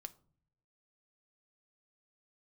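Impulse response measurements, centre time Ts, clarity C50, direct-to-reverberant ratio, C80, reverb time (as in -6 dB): 3 ms, 20.0 dB, 9.5 dB, 24.5 dB, no single decay rate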